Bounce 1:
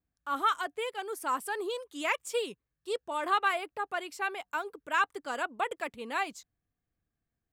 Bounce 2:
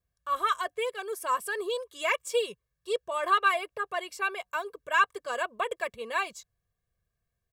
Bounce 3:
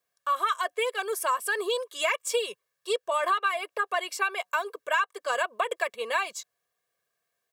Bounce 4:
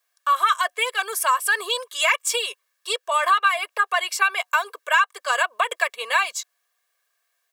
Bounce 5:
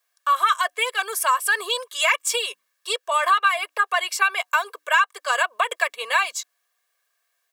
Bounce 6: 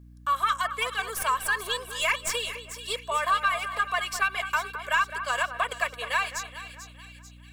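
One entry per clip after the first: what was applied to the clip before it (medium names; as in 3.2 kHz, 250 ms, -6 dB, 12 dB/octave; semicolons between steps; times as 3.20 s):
comb 1.8 ms, depth 88%
high-pass 480 Hz 12 dB/octave; compression 6:1, threshold -31 dBFS, peak gain reduction 13 dB; trim +8 dB
high-pass 890 Hz 12 dB/octave; trim +8.5 dB
hum notches 60/120/180/240/300 Hz
tracing distortion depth 0.022 ms; two-band feedback delay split 2.4 kHz, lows 210 ms, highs 441 ms, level -10.5 dB; hum 60 Hz, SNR 20 dB; trim -6 dB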